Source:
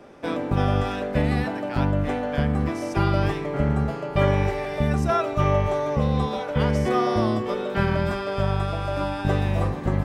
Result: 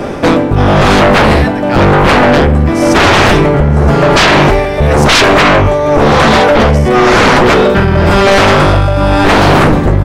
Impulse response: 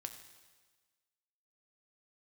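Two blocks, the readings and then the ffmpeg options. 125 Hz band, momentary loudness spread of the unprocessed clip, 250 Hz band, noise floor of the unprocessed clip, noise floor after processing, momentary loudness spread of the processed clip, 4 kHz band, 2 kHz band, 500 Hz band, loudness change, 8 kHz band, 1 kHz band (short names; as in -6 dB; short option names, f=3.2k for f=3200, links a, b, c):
+13.0 dB, 4 LU, +15.5 dB, -31 dBFS, -13 dBFS, 4 LU, +24.0 dB, +22.5 dB, +17.0 dB, +16.5 dB, +25.0 dB, +18.5 dB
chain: -filter_complex "[0:a]lowshelf=f=150:g=7.5,asplit=2[a][b];[b]alimiter=limit=-15dB:level=0:latency=1:release=340,volume=-0.5dB[c];[a][c]amix=inputs=2:normalize=0,tremolo=f=0.95:d=0.8,aeval=exprs='0.708*sin(PI/2*8.91*val(0)/0.708)':c=same,aecho=1:1:969:0.119"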